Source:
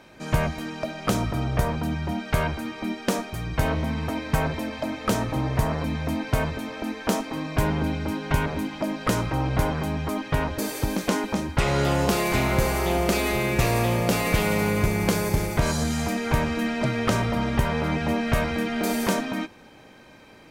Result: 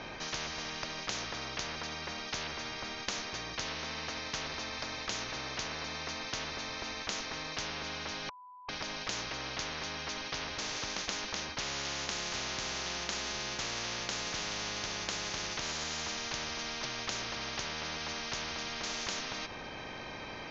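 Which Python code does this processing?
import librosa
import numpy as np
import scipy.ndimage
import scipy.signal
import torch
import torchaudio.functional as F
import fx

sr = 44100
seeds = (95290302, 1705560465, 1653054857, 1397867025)

y = fx.edit(x, sr, fx.bleep(start_s=8.29, length_s=0.4, hz=996.0, db=-15.5), tone=tone)
y = scipy.signal.sosfilt(scipy.signal.butter(16, 6300.0, 'lowpass', fs=sr, output='sos'), y)
y = fx.notch(y, sr, hz=1400.0, q=19.0)
y = fx.spectral_comp(y, sr, ratio=10.0)
y = y * 10.0 ** (-7.0 / 20.0)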